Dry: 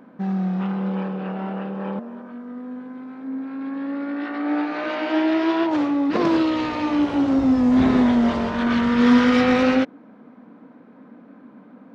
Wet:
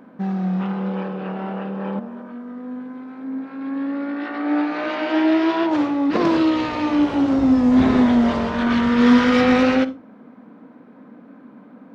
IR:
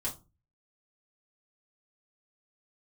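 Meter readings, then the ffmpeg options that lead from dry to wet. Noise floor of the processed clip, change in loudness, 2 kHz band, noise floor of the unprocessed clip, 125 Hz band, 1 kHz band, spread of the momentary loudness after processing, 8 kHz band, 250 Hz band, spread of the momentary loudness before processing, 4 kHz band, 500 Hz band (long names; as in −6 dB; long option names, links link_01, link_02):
−46 dBFS, +1.5 dB, +1.5 dB, −48 dBFS, +1.0 dB, +1.5 dB, 16 LU, can't be measured, +1.5 dB, 16 LU, +1.5 dB, +1.5 dB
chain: -filter_complex "[0:a]asplit=2[link_01][link_02];[1:a]atrim=start_sample=2205,adelay=44[link_03];[link_02][link_03]afir=irnorm=-1:irlink=0,volume=-17.5dB[link_04];[link_01][link_04]amix=inputs=2:normalize=0,volume=1.5dB"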